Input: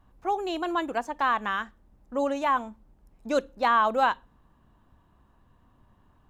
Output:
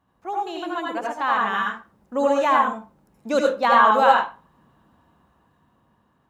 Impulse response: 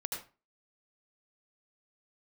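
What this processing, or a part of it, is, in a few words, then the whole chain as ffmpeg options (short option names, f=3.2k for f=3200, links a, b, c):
far laptop microphone: -filter_complex "[1:a]atrim=start_sample=2205[a];[0:a][a]afir=irnorm=-1:irlink=0,highpass=120,dynaudnorm=f=330:g=9:m=11.5dB,volume=-1.5dB"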